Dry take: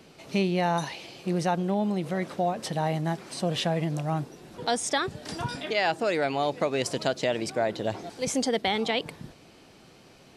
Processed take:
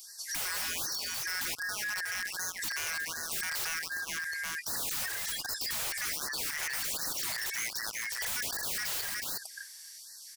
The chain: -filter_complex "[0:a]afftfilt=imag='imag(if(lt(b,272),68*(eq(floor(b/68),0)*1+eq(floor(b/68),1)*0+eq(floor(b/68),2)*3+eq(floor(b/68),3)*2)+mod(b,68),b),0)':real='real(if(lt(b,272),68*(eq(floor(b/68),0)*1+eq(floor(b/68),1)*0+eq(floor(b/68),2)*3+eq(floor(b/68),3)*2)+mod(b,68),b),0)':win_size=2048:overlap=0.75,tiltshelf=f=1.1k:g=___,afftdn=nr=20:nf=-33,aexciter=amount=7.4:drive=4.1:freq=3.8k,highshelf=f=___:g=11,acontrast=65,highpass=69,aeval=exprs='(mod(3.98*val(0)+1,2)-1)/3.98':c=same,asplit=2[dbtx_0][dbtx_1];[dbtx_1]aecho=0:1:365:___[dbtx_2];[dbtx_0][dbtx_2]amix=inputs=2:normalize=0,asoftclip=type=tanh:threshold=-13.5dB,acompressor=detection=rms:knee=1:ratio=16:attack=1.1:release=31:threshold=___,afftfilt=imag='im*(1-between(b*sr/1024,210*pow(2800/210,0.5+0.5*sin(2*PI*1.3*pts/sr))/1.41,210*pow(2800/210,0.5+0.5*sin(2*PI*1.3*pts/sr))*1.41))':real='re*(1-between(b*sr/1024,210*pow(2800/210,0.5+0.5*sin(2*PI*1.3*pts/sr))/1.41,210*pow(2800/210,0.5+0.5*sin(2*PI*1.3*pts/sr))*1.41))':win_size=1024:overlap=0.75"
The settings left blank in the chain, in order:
-5.5, 6.1k, 0.251, -32dB